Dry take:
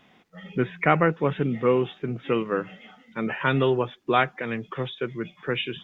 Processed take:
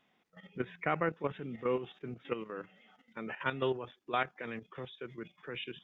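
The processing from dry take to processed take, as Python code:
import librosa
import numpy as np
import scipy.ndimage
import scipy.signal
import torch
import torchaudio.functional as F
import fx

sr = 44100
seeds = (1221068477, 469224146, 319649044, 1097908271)

y = fx.low_shelf(x, sr, hz=180.0, db=-6.5)
y = fx.level_steps(y, sr, step_db=11)
y = y * librosa.db_to_amplitude(-7.5)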